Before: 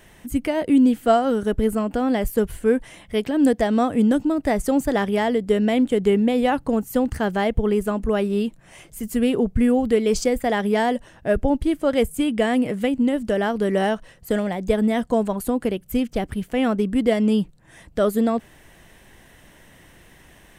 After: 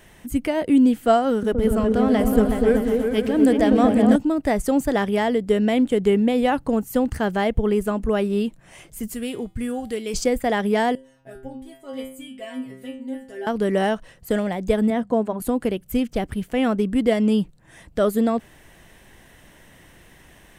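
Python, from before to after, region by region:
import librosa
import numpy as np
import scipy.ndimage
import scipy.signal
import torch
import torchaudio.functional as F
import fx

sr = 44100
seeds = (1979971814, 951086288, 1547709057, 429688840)

y = fx.chain(x, sr, fx.backlash(play_db=-44.0),
    fx.echo_opening(ms=123, hz=200, octaves=2, feedback_pct=70, wet_db=0), at=(1.3, 4.16))
y = fx.chain(y, sr, fx.high_shelf(hz=3000.0, db=11.0),
    fx.comb_fb(f0_hz=110.0, decay_s=0.39, harmonics='odd', damping=0.0, mix_pct=70), at=(9.14, 10.14))
y = fx.chain(y, sr, fx.high_shelf(hz=8200.0, db=6.5),
    fx.notch(hz=1200.0, q=14.0),
    fx.stiff_resonator(f0_hz=130.0, decay_s=0.59, stiffness=0.002), at=(10.95, 13.47))
y = fx.chain(y, sr, fx.highpass(hz=77.0, slope=12),
    fx.high_shelf(hz=2500.0, db=-11.5),
    fx.hum_notches(base_hz=50, count=4), at=(14.9, 15.42))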